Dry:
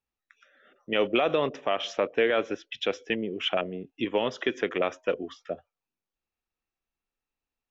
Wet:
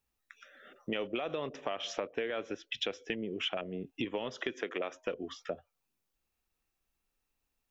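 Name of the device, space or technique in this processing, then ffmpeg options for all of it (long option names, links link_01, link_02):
ASMR close-microphone chain: -filter_complex "[0:a]asettb=1/sr,asplit=3[link_01][link_02][link_03];[link_01]atrim=end=4.534[link_04];[link_02]atrim=start=4.53:end=4.95,asetpts=PTS-STARTPTS,afade=type=in:duration=0.004:curve=qsin,afade=type=out:start_time=0.416:duration=0.004:curve=qsin,highpass=240[link_05];[link_03]atrim=start=4.946[link_06];[link_04][link_05]acrossfade=duration=0.004:curve1=hsin:curve2=qsin[link_07];[link_07][link_06]acrossfade=duration=0.004:curve1=qsin:curve2=hsin,lowshelf=frequency=140:gain=5,acompressor=threshold=-37dB:ratio=6,highshelf=frequency=6500:gain=6.5,volume=3.5dB"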